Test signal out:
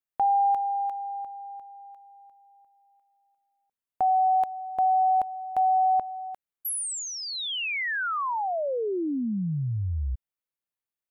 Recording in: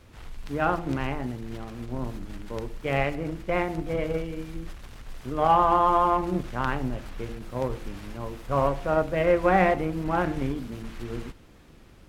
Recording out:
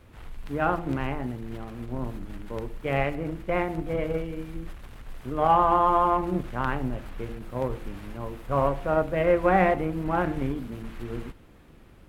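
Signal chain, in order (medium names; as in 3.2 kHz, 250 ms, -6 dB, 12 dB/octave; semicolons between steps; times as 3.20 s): peaking EQ 5.6 kHz -7.5 dB 1.3 oct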